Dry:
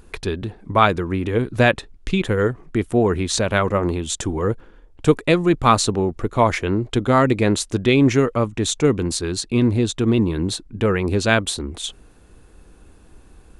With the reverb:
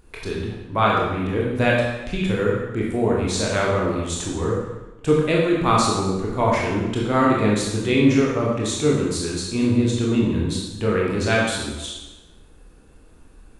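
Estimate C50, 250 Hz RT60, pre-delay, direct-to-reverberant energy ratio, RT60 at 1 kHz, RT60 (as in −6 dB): 1.0 dB, 1.1 s, 19 ms, −4.0 dB, 1.1 s, 1.1 s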